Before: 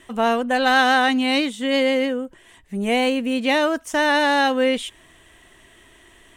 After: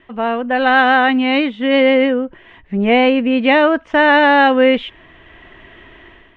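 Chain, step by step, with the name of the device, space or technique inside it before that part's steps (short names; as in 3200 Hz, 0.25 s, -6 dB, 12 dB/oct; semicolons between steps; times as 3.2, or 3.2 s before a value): action camera in a waterproof case (LPF 2900 Hz 24 dB/oct; AGC gain up to 10.5 dB; AAC 96 kbps 44100 Hz)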